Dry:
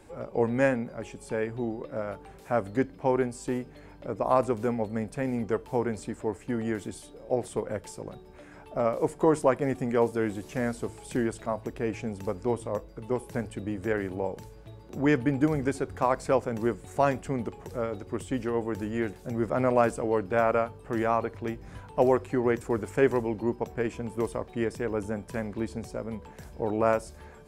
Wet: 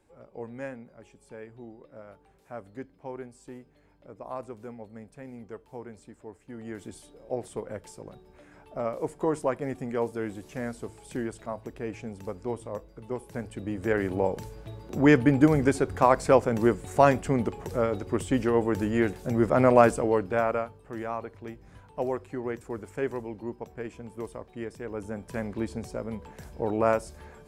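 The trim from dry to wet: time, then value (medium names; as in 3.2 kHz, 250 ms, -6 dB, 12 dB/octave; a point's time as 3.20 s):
6.46 s -13.5 dB
6.89 s -4.5 dB
13.29 s -4.5 dB
14.17 s +5 dB
19.90 s +5 dB
20.90 s -7.5 dB
24.77 s -7.5 dB
25.45 s +0.5 dB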